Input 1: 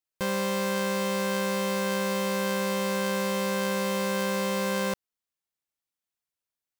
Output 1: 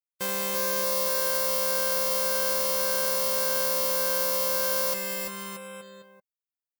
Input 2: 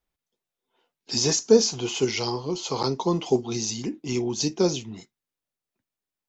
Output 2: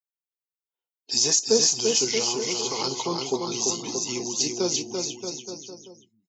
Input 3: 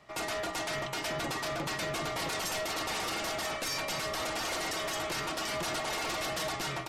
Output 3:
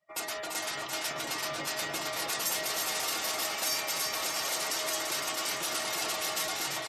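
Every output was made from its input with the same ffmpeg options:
ffmpeg -i in.wav -filter_complex "[0:a]asplit=2[link_01][link_02];[link_02]aecho=0:1:340|629|874.6|1083|1261:0.631|0.398|0.251|0.158|0.1[link_03];[link_01][link_03]amix=inputs=2:normalize=0,afftdn=noise_reduction=25:noise_floor=-47,aemphasis=mode=production:type=bsi,volume=-3dB" out.wav

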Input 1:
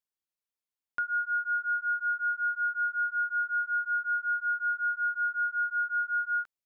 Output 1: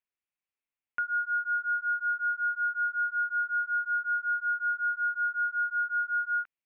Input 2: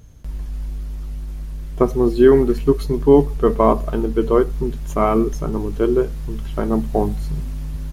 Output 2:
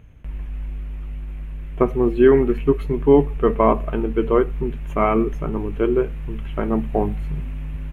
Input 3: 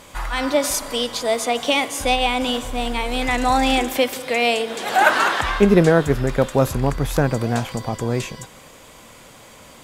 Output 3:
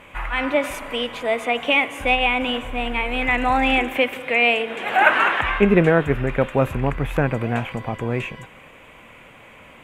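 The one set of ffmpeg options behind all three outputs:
ffmpeg -i in.wav -af "highshelf=frequency=3500:width_type=q:width=3:gain=-11.5,volume=-2dB" out.wav

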